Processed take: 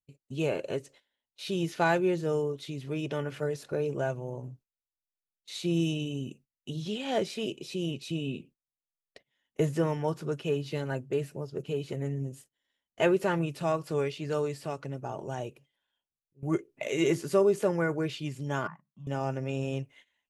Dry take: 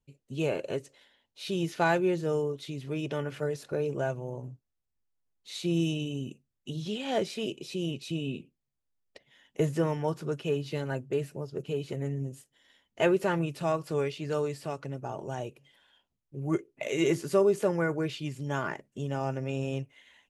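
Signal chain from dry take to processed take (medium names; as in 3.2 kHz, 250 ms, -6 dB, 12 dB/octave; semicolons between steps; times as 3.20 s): gate -54 dBFS, range -18 dB; 15.34–16.43 s: slow attack 558 ms; 18.67–19.07 s: two resonant band-passes 430 Hz, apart 2.7 oct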